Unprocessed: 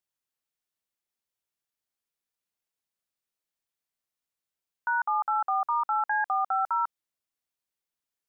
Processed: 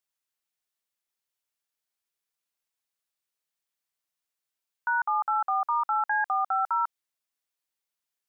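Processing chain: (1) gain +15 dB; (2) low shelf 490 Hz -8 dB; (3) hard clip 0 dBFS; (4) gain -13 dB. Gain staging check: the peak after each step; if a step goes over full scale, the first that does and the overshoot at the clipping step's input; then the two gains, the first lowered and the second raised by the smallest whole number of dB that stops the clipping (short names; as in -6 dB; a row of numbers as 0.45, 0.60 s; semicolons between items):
-5.0, -6.0, -6.0, -19.0 dBFS; no overload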